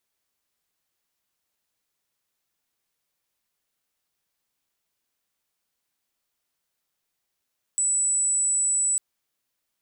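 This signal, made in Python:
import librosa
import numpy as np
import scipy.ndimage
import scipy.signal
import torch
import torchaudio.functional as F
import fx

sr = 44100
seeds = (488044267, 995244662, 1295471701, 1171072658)

y = 10.0 ** (-20.0 / 20.0) * np.sin(2.0 * np.pi * (7930.0 * (np.arange(round(1.2 * sr)) / sr)))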